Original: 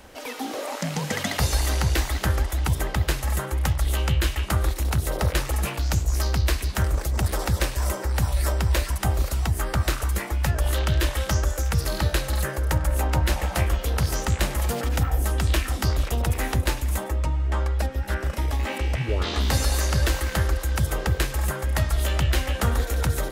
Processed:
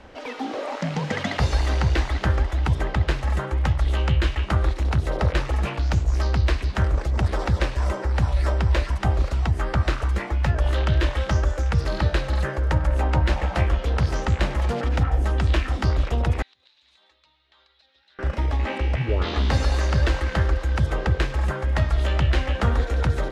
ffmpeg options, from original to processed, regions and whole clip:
-filter_complex "[0:a]asettb=1/sr,asplit=3[a][b][c];[a]atrim=end=16.424[d];[b]atrim=start=16.42:end=18.19,asetpts=PTS-STARTPTS,afade=t=in:d=0.004:c=qsin,afade=t=out:st=1.766:d=0.004:c=qsin,bandpass=f=3.9k:t=q:w=7.5,acompressor=threshold=-52dB:ratio=8:attack=3.2:release=140:knee=1:detection=peak[e];[c]atrim=start=18.186[f];[d][e]acrossfade=d=0.004:c1=hsin:c2=qsin[g];[g][f]acrossfade=d=0.004:c1=qsin:c2=hsin,lowpass=4.9k,highshelf=f=3.6k:g=-7,volume=2dB"

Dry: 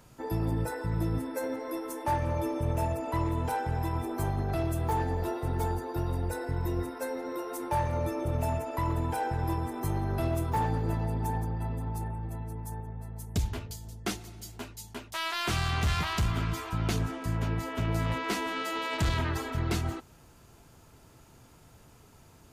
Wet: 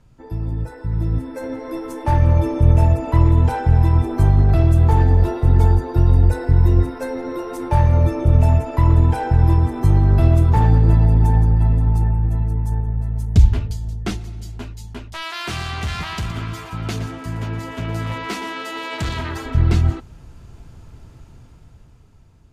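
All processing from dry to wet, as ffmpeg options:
-filter_complex "[0:a]asettb=1/sr,asplit=3[a][b][c];[a]atrim=end=15.224[d];[b]atrim=start=15.22:end=19.46,asetpts=PTS-STARTPTS,afade=t=in:d=0.004:c=qsin,afade=t=out:st=4.236:d=0.004:c=qsin,highpass=f=370:p=1,highshelf=f=9.6k:g=7.5,aecho=1:1:118:0.266,atrim=end_sample=186984[e];[c]atrim=start=19.456[f];[d][e]acrossfade=d=0.004:c1=hsin:c2=qsin[g];[g][f]acrossfade=d=0.004:c1=qsin:c2=hsin,highshelf=f=2.1k:g=10.5,dynaudnorm=f=220:g=13:m=12.5dB,aemphasis=mode=reproduction:type=riaa,volume=-7.5dB"

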